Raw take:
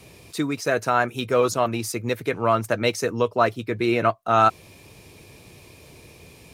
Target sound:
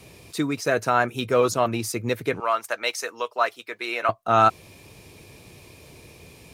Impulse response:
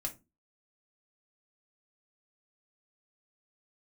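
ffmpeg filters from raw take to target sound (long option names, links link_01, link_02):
-filter_complex "[0:a]asettb=1/sr,asplit=3[link_01][link_02][link_03];[link_01]atrim=end=2.404[link_04];[link_02]atrim=start=2.4:end=4.09,asetpts=PTS-STARTPTS,afade=type=in:duration=0.004:curve=qsin,afade=type=out:start_time=1.686:duration=0.004:curve=qsin,highpass=790[link_05];[link_03]atrim=start=4.086[link_06];[link_04][link_05]acrossfade=duration=0.004:curve1=hsin:curve2=qsin[link_07];[link_07][link_06]acrossfade=duration=0.004:curve1=qsin:curve2=hsin"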